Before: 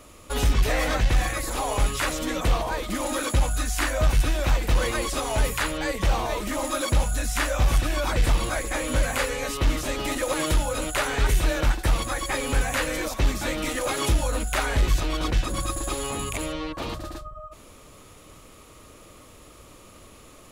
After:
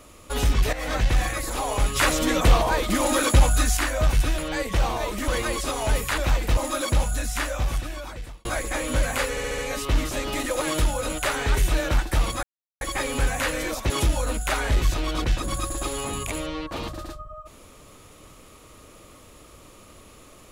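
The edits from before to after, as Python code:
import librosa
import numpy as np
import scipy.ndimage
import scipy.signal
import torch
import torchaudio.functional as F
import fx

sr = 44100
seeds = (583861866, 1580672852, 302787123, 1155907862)

y = fx.edit(x, sr, fx.fade_in_from(start_s=0.73, length_s=0.26, floor_db=-13.0),
    fx.clip_gain(start_s=1.96, length_s=1.81, db=5.5),
    fx.swap(start_s=4.38, length_s=0.39, other_s=5.67, other_length_s=0.9),
    fx.fade_out_span(start_s=7.12, length_s=1.33),
    fx.stutter(start_s=9.3, slice_s=0.07, count=5),
    fx.insert_silence(at_s=12.15, length_s=0.38),
    fx.cut(start_s=13.24, length_s=0.72), tone=tone)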